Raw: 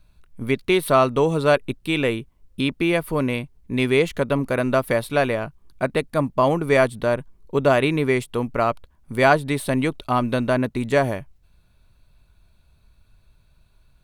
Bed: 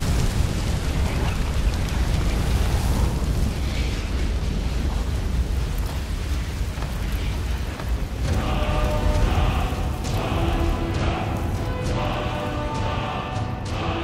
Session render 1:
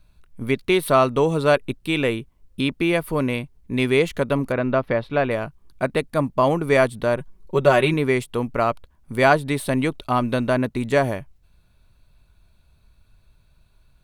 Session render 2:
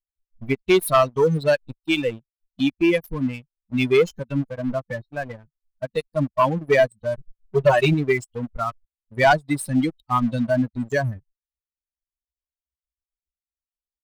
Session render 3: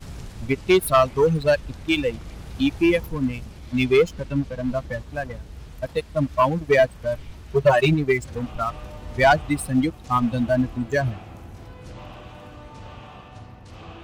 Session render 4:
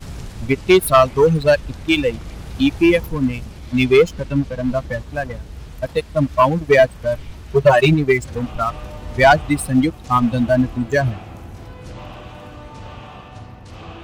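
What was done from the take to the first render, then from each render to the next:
0:04.52–0:05.31: high-frequency loss of the air 260 metres; 0:07.17–0:07.94: comb filter 5.4 ms
spectral dynamics exaggerated over time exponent 3; leveller curve on the samples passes 2
mix in bed −15.5 dB
level +5 dB; brickwall limiter −3 dBFS, peak gain reduction 1 dB

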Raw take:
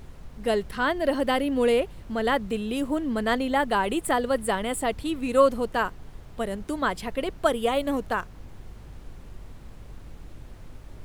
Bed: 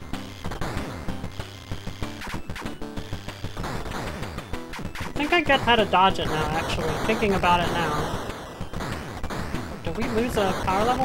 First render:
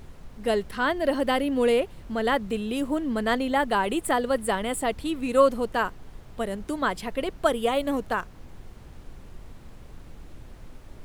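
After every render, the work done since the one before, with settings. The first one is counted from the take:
hum removal 50 Hz, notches 3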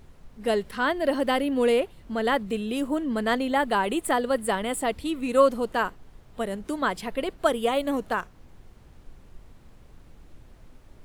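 noise reduction from a noise print 6 dB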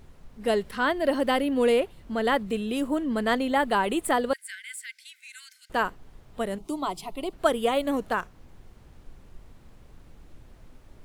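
0:04.33–0:05.70: Chebyshev high-pass with heavy ripple 1,500 Hz, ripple 9 dB
0:06.58–0:07.33: phaser with its sweep stopped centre 330 Hz, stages 8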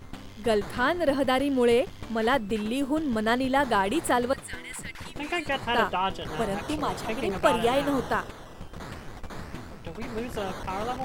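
mix in bed −9 dB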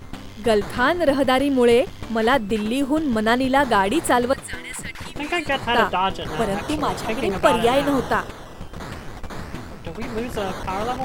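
level +6 dB
brickwall limiter −3 dBFS, peak gain reduction 1 dB

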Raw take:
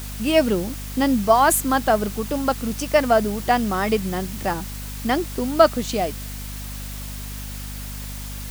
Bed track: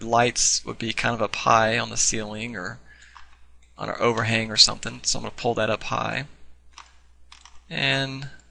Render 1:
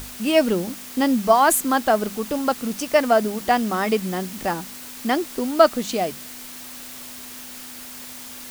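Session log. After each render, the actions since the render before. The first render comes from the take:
mains-hum notches 50/100/150/200 Hz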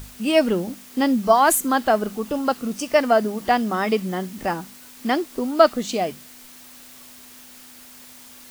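noise reduction from a noise print 7 dB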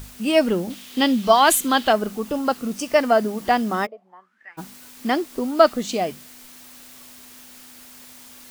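0:00.70–0:01.93: parametric band 3,300 Hz +11.5 dB 1 octave
0:03.85–0:04.57: resonant band-pass 510 Hz → 2,400 Hz, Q 15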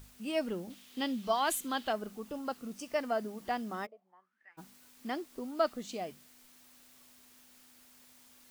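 level −15.5 dB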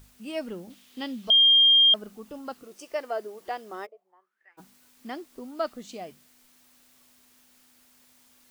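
0:01.30–0:01.94: beep over 3,210 Hz −14 dBFS
0:02.63–0:04.60: low shelf with overshoot 300 Hz −7 dB, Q 3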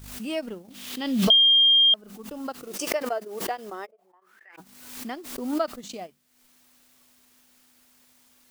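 transient designer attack +3 dB, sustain −11 dB
background raised ahead of every attack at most 53 dB per second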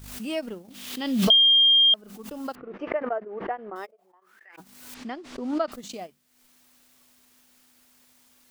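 0:02.55–0:03.76: low-pass filter 2,000 Hz 24 dB per octave
0:04.94–0:05.72: high-frequency loss of the air 120 metres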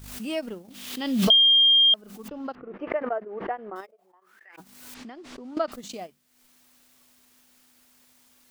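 0:02.28–0:02.90: high-frequency loss of the air 230 metres
0:03.80–0:05.57: downward compressor, threshold −38 dBFS

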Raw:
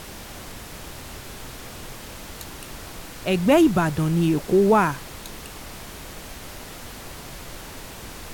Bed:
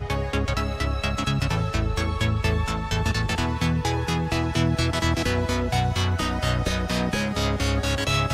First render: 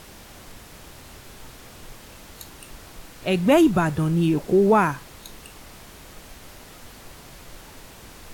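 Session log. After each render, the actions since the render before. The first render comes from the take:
noise reduction from a noise print 6 dB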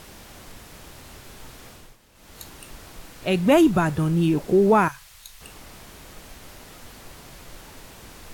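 0:01.68–0:02.42: duck −13 dB, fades 0.29 s
0:04.88–0:05.41: guitar amp tone stack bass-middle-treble 10-0-10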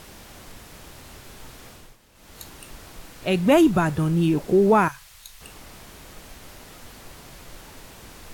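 no processing that can be heard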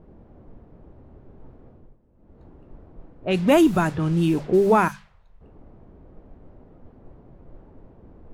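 mains-hum notches 50/100/150/200 Hz
low-pass that shuts in the quiet parts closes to 390 Hz, open at −16 dBFS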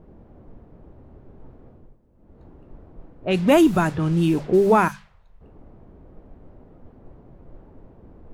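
level +1 dB

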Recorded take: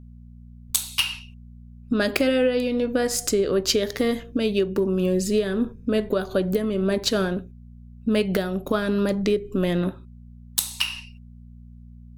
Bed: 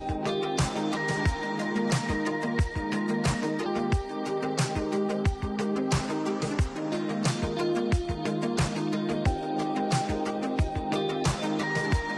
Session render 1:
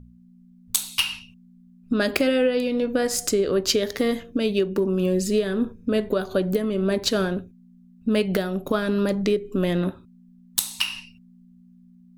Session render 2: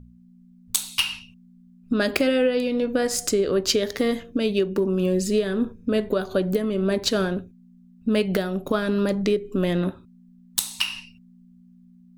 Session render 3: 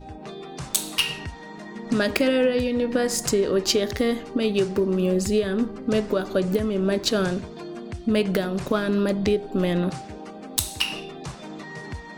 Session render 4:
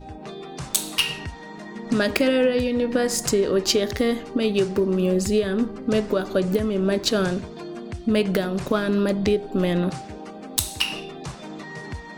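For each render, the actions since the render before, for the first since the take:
hum removal 60 Hz, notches 2
parametric band 12,000 Hz −4.5 dB 0.22 octaves
mix in bed −9 dB
level +1 dB

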